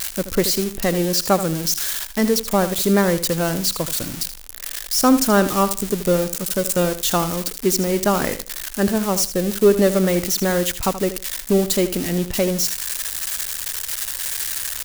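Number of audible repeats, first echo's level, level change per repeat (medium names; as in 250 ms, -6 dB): 2, -12.5 dB, -14.0 dB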